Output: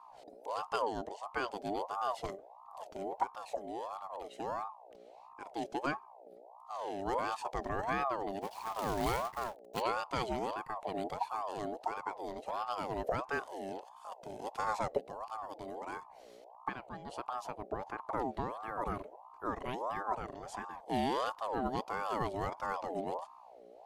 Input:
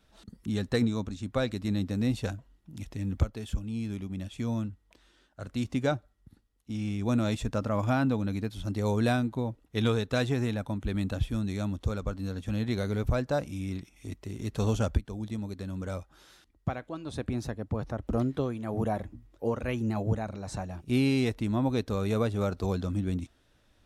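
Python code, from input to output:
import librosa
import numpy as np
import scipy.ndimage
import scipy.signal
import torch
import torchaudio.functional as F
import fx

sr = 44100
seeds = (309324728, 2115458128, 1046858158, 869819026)

y = fx.quant_companded(x, sr, bits=4, at=(8.41, 9.8), fade=0.02)
y = fx.add_hum(y, sr, base_hz=60, snr_db=17)
y = fx.ring_lfo(y, sr, carrier_hz=740.0, swing_pct=35, hz=1.5)
y = F.gain(torch.from_numpy(y), -5.0).numpy()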